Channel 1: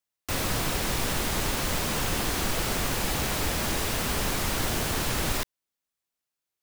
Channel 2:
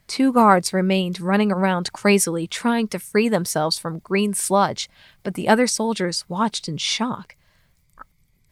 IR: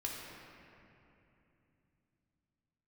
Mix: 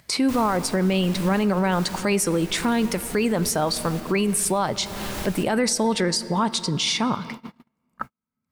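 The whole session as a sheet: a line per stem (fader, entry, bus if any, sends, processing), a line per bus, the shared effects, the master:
-0.5 dB, 0.00 s, send -14 dB, random-step tremolo, depth 75%; auto duck -13 dB, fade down 1.00 s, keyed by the second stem
+2.0 dB, 0.00 s, send -14.5 dB, high-pass 63 Hz 12 dB/octave; peak limiter -12.5 dBFS, peak gain reduction 10.5 dB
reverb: on, RT60 2.9 s, pre-delay 3 ms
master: gate -38 dBFS, range -51 dB; upward compressor, threshold -20 dBFS; peak limiter -13.5 dBFS, peak gain reduction 5.5 dB

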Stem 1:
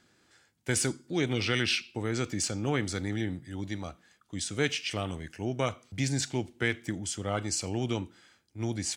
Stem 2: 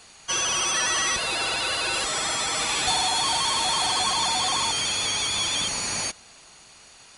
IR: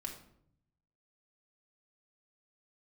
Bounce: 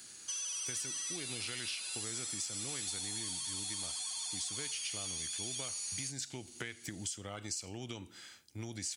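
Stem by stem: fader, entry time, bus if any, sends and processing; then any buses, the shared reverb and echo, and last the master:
0.0 dB, 0.00 s, no send, compression 4:1, threshold -34 dBFS, peak gain reduction 11 dB
-9.5 dB, 0.00 s, no send, pre-emphasis filter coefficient 0.8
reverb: none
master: treble shelf 2.4 kHz +12 dB; compression 3:1, threshold -41 dBFS, peak gain reduction 14.5 dB

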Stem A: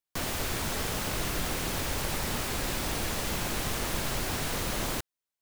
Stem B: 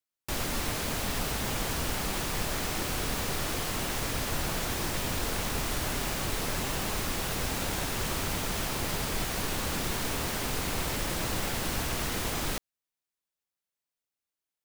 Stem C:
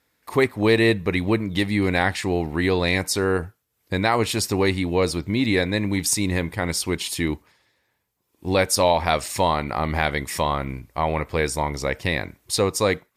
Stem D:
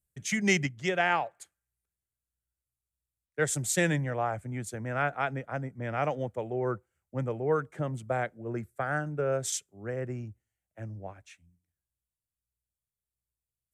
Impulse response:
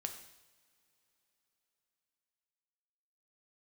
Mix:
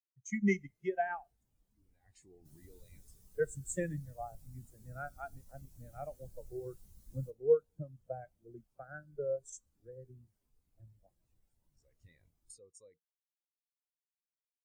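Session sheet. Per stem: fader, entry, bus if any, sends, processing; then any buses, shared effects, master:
-11.0 dB, 2.30 s, no send, tone controls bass +5 dB, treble +6 dB
-19.5 dB, 0.00 s, no send, level rider gain up to 6 dB
-4.5 dB, 0.00 s, no send, peaking EQ 7.1 kHz +8 dB 0.78 oct; peak limiter -16 dBFS, peak gain reduction 13.5 dB; compression 8:1, threshold -32 dBFS, peak gain reduction 11.5 dB; auto duck -23 dB, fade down 0.35 s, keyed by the fourth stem
-7.5 dB, 0.00 s, send -5 dB, transient shaper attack +4 dB, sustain -7 dB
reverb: on, pre-delay 3 ms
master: treble shelf 5 kHz +11.5 dB; saturation -16.5 dBFS, distortion -23 dB; spectral contrast expander 2.5:1

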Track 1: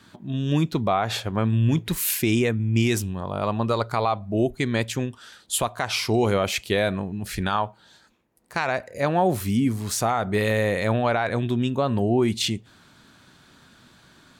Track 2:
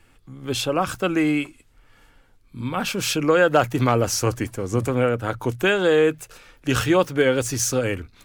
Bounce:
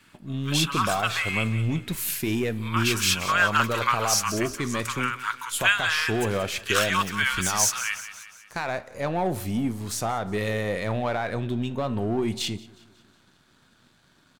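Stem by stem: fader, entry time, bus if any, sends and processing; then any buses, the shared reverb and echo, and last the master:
-1.5 dB, 0.00 s, no send, echo send -22.5 dB, partial rectifier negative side -3 dB; waveshaping leveller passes 1; flange 0.14 Hz, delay 6.7 ms, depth 9.3 ms, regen -83%
+2.5 dB, 0.00 s, no send, echo send -12.5 dB, elliptic high-pass 1 kHz, stop band 40 dB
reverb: none
echo: feedback delay 181 ms, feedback 51%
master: none

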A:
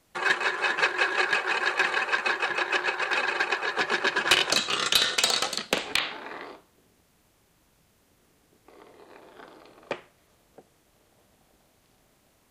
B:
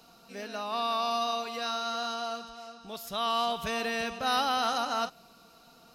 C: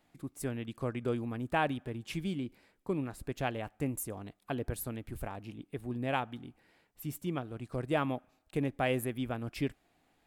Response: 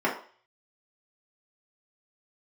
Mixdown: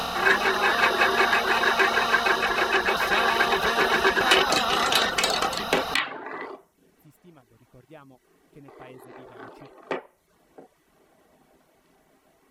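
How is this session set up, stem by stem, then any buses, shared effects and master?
-4.0 dB, 0.00 s, send -7 dB, none
-2.0 dB, 0.00 s, no send, spectral levelling over time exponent 0.2
-17.0 dB, 0.00 s, no send, none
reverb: on, RT60 0.45 s, pre-delay 3 ms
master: reverb removal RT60 0.59 s; bass shelf 100 Hz +5 dB

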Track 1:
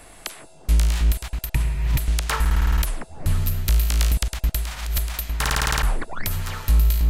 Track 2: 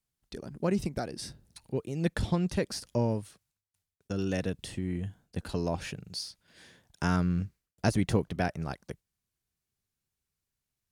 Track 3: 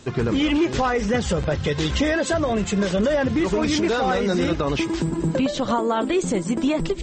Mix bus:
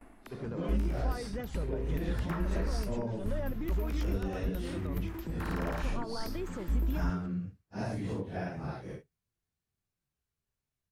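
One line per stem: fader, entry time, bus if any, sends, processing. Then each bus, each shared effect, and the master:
-5.0 dB, 0.00 s, no bus, no send, gate with hold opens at -36 dBFS; graphic EQ 125/250/500/4000/8000 Hz -11/+12/-6/-11/-11 dB; auto duck -7 dB, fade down 0.25 s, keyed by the second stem
-8.0 dB, 0.00 s, bus A, no send, phase randomisation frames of 200 ms; level rider gain up to 8.5 dB
-17.0 dB, 0.25 s, bus A, no send, none
bus A: 0.0 dB, compression 6:1, threshold -32 dBFS, peak gain reduction 10.5 dB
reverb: none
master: treble shelf 2.6 kHz -8.5 dB

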